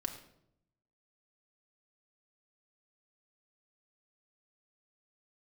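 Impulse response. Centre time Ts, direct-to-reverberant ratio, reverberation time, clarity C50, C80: 17 ms, 2.5 dB, 0.75 s, 9.0 dB, 11.0 dB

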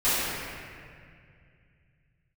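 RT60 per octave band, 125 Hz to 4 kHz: 3.9 s, 3.0 s, 2.4 s, 2.0 s, 2.4 s, 1.6 s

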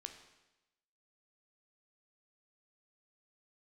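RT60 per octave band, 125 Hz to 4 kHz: 1.0 s, 1.0 s, 1.0 s, 1.0 s, 1.0 s, 1.0 s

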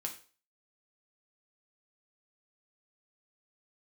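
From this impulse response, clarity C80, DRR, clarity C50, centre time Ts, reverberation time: 15.0 dB, 1.5 dB, 10.5 dB, 14 ms, 0.40 s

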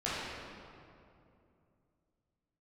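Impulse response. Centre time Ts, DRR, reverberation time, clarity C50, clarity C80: 157 ms, -11.0 dB, 2.6 s, -4.0 dB, -1.5 dB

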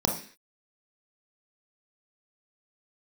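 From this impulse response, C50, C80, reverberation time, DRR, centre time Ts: 7.0 dB, 12.5 dB, 0.45 s, 1.5 dB, 22 ms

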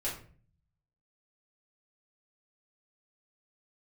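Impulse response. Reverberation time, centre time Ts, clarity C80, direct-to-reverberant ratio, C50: 0.45 s, 31 ms, 11.5 dB, -8.0 dB, 7.0 dB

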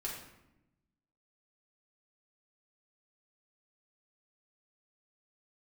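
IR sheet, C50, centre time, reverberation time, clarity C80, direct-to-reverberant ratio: 3.0 dB, 46 ms, 0.90 s, 6.0 dB, -5.5 dB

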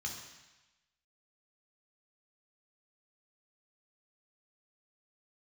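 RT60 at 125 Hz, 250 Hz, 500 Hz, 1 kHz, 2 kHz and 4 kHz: 1.0 s, 0.95 s, 1.0 s, 1.1 s, 1.2 s, 1.2 s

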